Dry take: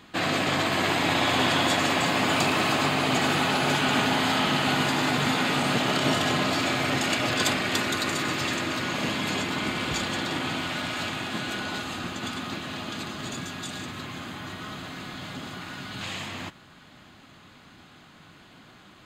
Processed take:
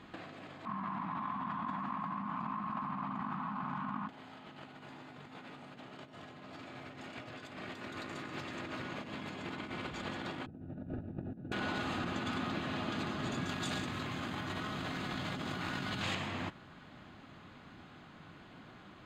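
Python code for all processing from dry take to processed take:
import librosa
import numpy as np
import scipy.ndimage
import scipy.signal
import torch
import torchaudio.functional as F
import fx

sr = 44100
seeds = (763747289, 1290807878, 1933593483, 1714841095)

y = fx.chain(x, sr, fx.double_bandpass(hz=460.0, octaves=2.4),
    fx.env_flatten(amount_pct=100), at=(0.65, 4.09))
y = fx.chain(y, sr, fx.moving_average(points=41),
    fx.tilt_eq(slope=-3.5),
    fx.hum_notches(base_hz=60, count=2), at=(10.46, 11.52))
y = fx.chain(y, sr, fx.high_shelf(hz=3900.0, db=7.0),
    fx.env_flatten(amount_pct=100), at=(13.49, 16.15))
y = fx.lowpass(y, sr, hz=1800.0, slope=6)
y = fx.over_compress(y, sr, threshold_db=-34.0, ratio=-0.5)
y = F.gain(torch.from_numpy(y), -6.0).numpy()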